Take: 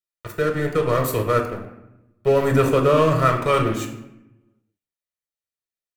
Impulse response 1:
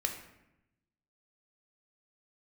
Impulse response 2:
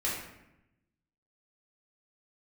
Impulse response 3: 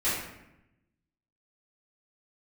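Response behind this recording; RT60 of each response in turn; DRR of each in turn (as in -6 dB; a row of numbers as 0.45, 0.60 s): 1; 0.85, 0.85, 0.85 s; 3.0, -7.0, -13.5 dB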